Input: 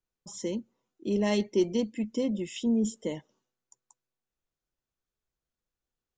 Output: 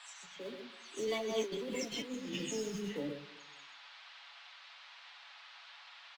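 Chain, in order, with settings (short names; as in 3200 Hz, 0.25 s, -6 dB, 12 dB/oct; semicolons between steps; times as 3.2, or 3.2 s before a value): spectral delay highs early, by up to 0.303 s; Doppler pass-by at 1.96, 24 m/s, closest 6.7 m; echo 0.128 s -6 dB; in parallel at -8 dB: short-mantissa float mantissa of 2-bit; on the sum: reverb RT60 1.0 s, pre-delay 5 ms, DRR 8 dB; rotary speaker horn 8 Hz, later 1.1 Hz, at 0.76; negative-ratio compressor -36 dBFS, ratio -1; flange 0.65 Hz, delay 3.4 ms, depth 5.7 ms, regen +63%; band noise 740–4100 Hz -62 dBFS; low shelf 330 Hz -8.5 dB; comb 7.1 ms, depth 45%; gain +6.5 dB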